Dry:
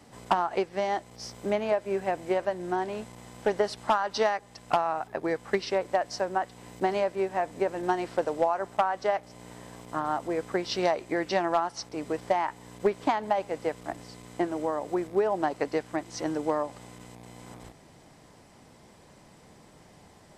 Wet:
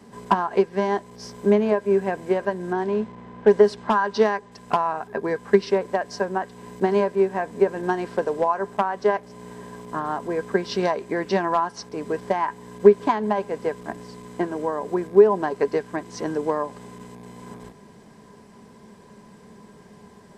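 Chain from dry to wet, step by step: 2.73–4.52 low-pass opened by the level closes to 2000 Hz, open at -21.5 dBFS; small resonant body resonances 210/410/1000/1600 Hz, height 14 dB, ringing for 65 ms

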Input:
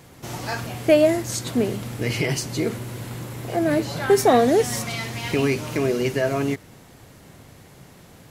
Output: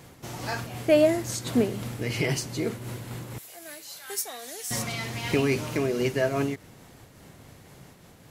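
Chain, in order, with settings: 3.38–4.71 differentiator; noise-modulated level, depth 60%

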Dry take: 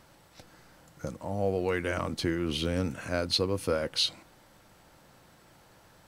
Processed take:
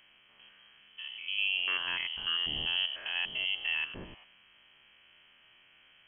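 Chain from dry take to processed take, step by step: stepped spectrum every 0.1 s; inverted band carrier 3200 Hz; gain -2 dB

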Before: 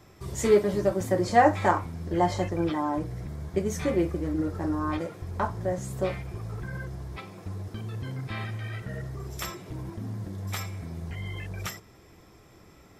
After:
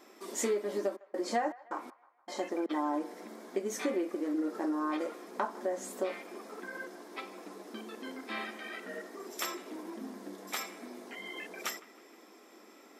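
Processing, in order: compressor 16:1, threshold -27 dBFS, peak gain reduction 15 dB; 0.95–2.69 step gate "x..xx.xx." 79 bpm -60 dB; brick-wall FIR high-pass 210 Hz; band-limited delay 0.156 s, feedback 47%, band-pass 1300 Hz, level -19 dB

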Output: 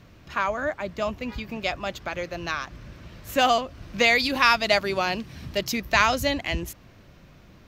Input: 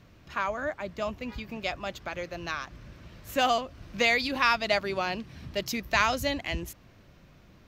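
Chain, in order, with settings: 4.15–5.58 high shelf 6200 Hz +6.5 dB; gain +4.5 dB

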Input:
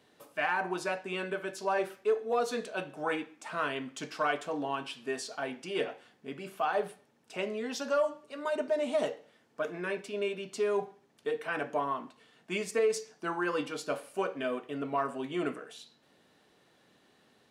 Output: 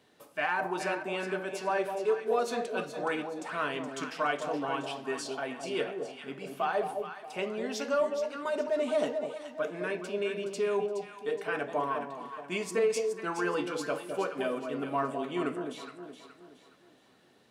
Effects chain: echo with dull and thin repeats by turns 0.21 s, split 880 Hz, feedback 61%, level -4.5 dB

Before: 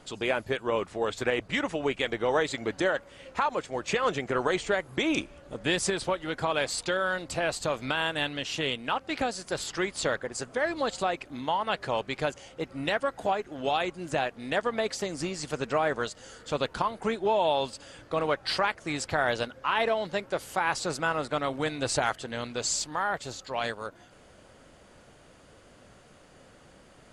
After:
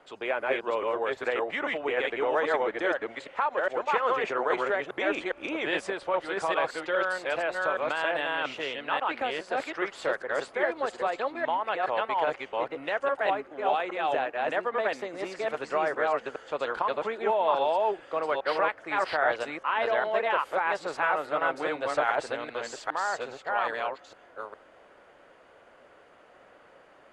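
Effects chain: reverse delay 0.409 s, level 0 dB; three-band isolator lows -19 dB, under 360 Hz, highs -18 dB, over 2700 Hz

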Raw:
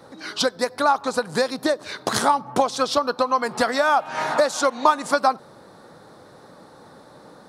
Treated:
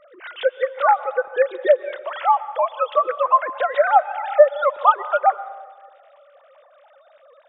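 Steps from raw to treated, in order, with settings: sine-wave speech; on a send: reverb RT60 1.4 s, pre-delay 0.114 s, DRR 15 dB; on the sum: gain +2.5 dB

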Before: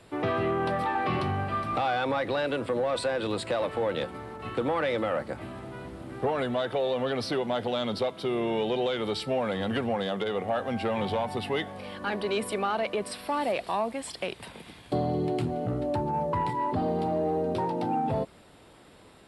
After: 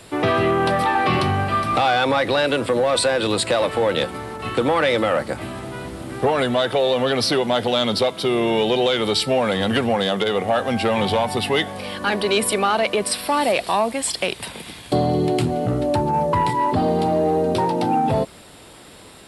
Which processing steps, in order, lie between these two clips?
high shelf 3500 Hz +10 dB; gain +8.5 dB

